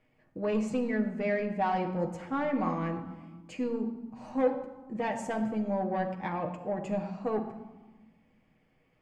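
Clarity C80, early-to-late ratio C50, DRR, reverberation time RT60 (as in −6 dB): 10.5 dB, 9.0 dB, 2.0 dB, 1.2 s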